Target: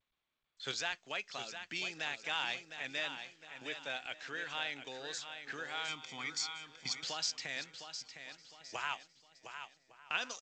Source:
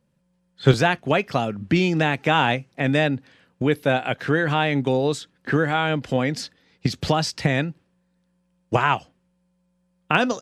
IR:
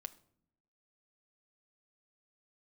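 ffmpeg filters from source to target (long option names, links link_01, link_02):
-filter_complex "[0:a]asplit=2[link_01][link_02];[link_02]aecho=0:1:709|1418|2127|2836:0.355|0.131|0.0486|0.018[link_03];[link_01][link_03]amix=inputs=2:normalize=0,agate=range=-18dB:threshold=-48dB:ratio=16:detection=peak,aderivative,asettb=1/sr,asplit=3[link_04][link_05][link_06];[link_04]atrim=end=5.884[link_07];[link_05]atrim=start=5.88:end=7.04,asetpts=PTS-STARTPTS,afade=type=in:duration=0.004:curve=qsin,afade=type=out:start_time=1.156:duration=0.004:curve=qsin,aecho=1:1:0.9:0.92,atrim=end_sample=51156[link_08];[link_06]atrim=start=7.036[link_09];[link_07][link_08]acrossfade=duration=0.004:curve1=hsin:curve2=qsin[link_10];[link_10][link_09]acrossfade=duration=0.004:curve1=qsin:curve2=hsin,asplit=2[link_11][link_12];[link_12]adelay=1157,lowpass=frequency=1900:poles=1,volume=-19dB,asplit=2[link_13][link_14];[link_14]adelay=1157,lowpass=frequency=1900:poles=1,volume=0.27[link_15];[link_13][link_15]amix=inputs=2:normalize=0[link_16];[link_11][link_16]amix=inputs=2:normalize=0,volume=-3.5dB" -ar 16000 -c:a g722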